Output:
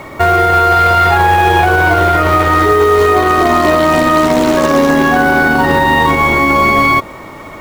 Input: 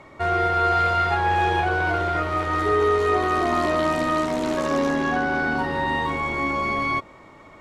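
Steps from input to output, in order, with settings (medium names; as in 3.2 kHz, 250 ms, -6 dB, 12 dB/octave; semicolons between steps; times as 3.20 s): companded quantiser 6-bit; loudness maximiser +17.5 dB; trim -1 dB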